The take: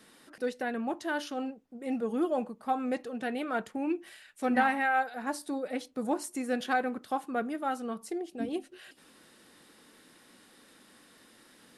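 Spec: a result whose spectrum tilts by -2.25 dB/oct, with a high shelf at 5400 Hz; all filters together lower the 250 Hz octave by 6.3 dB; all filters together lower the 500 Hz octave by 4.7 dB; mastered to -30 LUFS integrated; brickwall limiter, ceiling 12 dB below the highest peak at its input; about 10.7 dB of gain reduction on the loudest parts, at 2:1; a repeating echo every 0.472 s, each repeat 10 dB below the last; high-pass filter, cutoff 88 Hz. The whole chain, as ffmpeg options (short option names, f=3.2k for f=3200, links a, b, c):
-af "highpass=88,equalizer=f=250:t=o:g=-6,equalizer=f=500:t=o:g=-4,highshelf=f=5.4k:g=6.5,acompressor=threshold=-43dB:ratio=2,alimiter=level_in=13dB:limit=-24dB:level=0:latency=1,volume=-13dB,aecho=1:1:472|944|1416|1888:0.316|0.101|0.0324|0.0104,volume=17.5dB"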